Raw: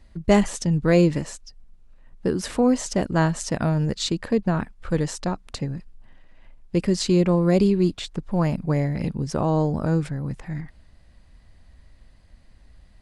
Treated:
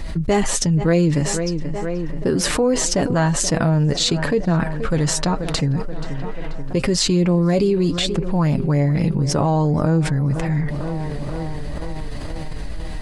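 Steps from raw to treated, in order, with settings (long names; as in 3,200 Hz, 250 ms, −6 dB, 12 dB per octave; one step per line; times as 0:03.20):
flanger 1.1 Hz, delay 5.9 ms, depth 1.8 ms, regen +37%
tape delay 482 ms, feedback 66%, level −20.5 dB, low-pass 3,300 Hz
envelope flattener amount 70%
level +1.5 dB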